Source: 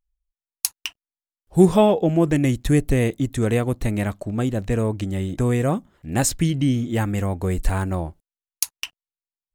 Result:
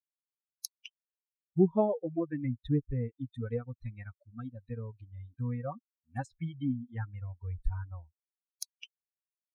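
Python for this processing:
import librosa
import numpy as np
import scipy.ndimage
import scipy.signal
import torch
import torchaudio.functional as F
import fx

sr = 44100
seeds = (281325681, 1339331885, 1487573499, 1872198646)

y = fx.bin_expand(x, sr, power=3.0)
y = fx.env_lowpass_down(y, sr, base_hz=1000.0, full_db=-20.0)
y = fx.dynamic_eq(y, sr, hz=2700.0, q=1.8, threshold_db=-52.0, ratio=4.0, max_db=-8)
y = y * 10.0 ** (-7.5 / 20.0)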